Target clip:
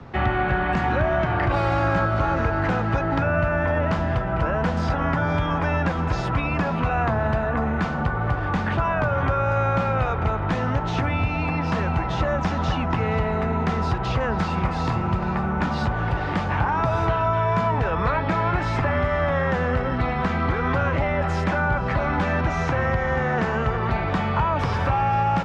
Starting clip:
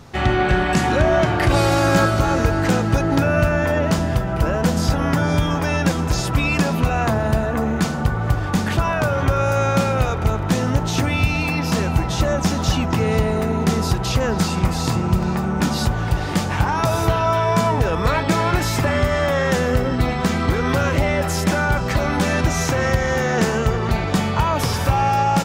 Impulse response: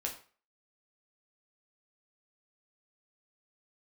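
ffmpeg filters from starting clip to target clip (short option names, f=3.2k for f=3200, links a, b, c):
-filter_complex "[0:a]lowpass=2.2k,acrossover=split=83|230|650|1400[a][b][c][d][e];[a]acompressor=threshold=-29dB:ratio=4[f];[b]acompressor=threshold=-30dB:ratio=4[g];[c]acompressor=threshold=-36dB:ratio=4[h];[d]acompressor=threshold=-26dB:ratio=4[i];[e]acompressor=threshold=-34dB:ratio=4[j];[f][g][h][i][j]amix=inputs=5:normalize=0,volume=2dB"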